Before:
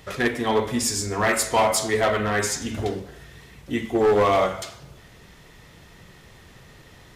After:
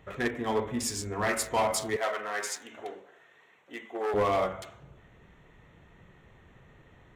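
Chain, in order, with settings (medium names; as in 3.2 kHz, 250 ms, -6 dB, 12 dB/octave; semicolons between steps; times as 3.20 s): local Wiener filter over 9 samples; 1.96–4.14 s: high-pass 570 Hz 12 dB/octave; trim -7 dB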